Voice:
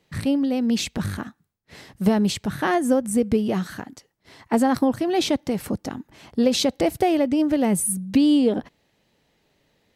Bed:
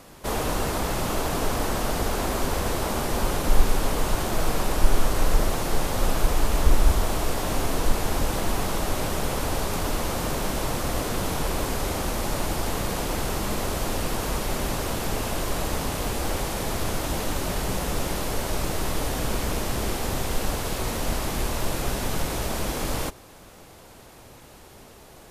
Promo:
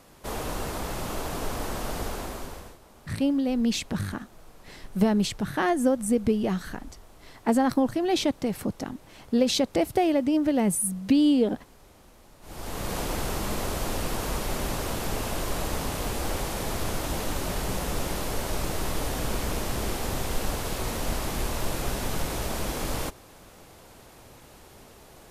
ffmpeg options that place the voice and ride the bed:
ffmpeg -i stem1.wav -i stem2.wav -filter_complex "[0:a]adelay=2950,volume=-3dB[link_01];[1:a]volume=18.5dB,afade=type=out:start_time=2.03:duration=0.75:silence=0.0891251,afade=type=in:start_time=12.41:duration=0.56:silence=0.0595662[link_02];[link_01][link_02]amix=inputs=2:normalize=0" out.wav

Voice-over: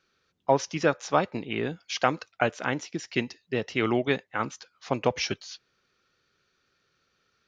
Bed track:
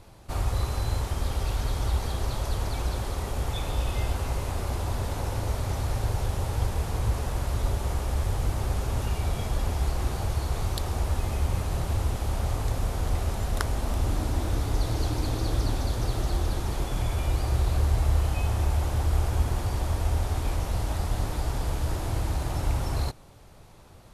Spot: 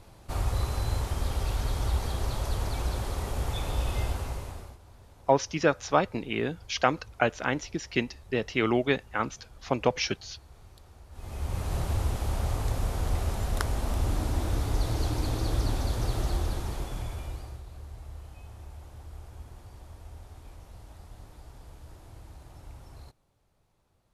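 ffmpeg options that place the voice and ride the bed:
ffmpeg -i stem1.wav -i stem2.wav -filter_complex "[0:a]adelay=4800,volume=0dB[link_01];[1:a]volume=21dB,afade=type=out:start_time=4:duration=0.78:silence=0.0749894,afade=type=in:start_time=11.11:duration=0.65:silence=0.0749894,afade=type=out:start_time=16.26:duration=1.36:silence=0.11885[link_02];[link_01][link_02]amix=inputs=2:normalize=0" out.wav

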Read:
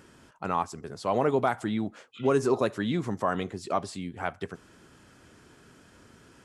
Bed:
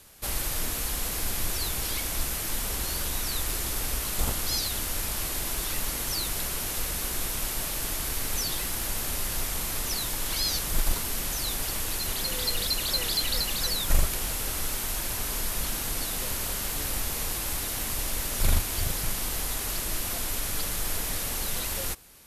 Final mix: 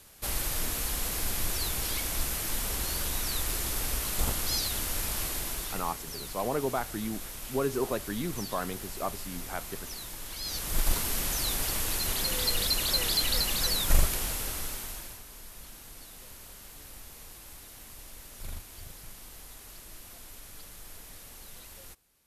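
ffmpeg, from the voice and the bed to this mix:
ffmpeg -i stem1.wav -i stem2.wav -filter_complex "[0:a]adelay=5300,volume=-5.5dB[link_01];[1:a]volume=9dB,afade=type=out:start_time=5.21:duration=0.79:silence=0.354813,afade=type=in:start_time=10.4:duration=0.55:silence=0.298538,afade=type=out:start_time=14.02:duration=1.21:silence=0.141254[link_02];[link_01][link_02]amix=inputs=2:normalize=0" out.wav

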